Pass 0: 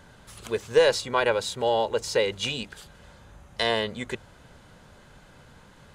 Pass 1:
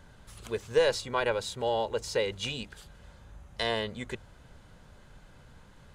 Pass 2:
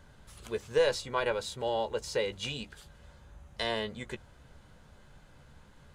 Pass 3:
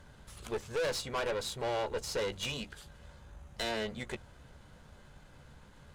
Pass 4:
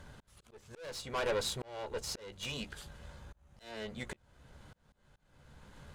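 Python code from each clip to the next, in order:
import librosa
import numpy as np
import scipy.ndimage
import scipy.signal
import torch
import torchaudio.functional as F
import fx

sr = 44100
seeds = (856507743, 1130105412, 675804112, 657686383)

y1 = fx.low_shelf(x, sr, hz=81.0, db=10.5)
y1 = F.gain(torch.from_numpy(y1), -5.5).numpy()
y2 = fx.doubler(y1, sr, ms=14.0, db=-10.5)
y2 = F.gain(torch.from_numpy(y2), -2.5).numpy()
y3 = fx.tube_stage(y2, sr, drive_db=34.0, bias=0.65)
y3 = F.gain(torch.from_numpy(y3), 4.5).numpy()
y4 = fx.auto_swell(y3, sr, attack_ms=630.0)
y4 = F.gain(torch.from_numpy(y4), 2.5).numpy()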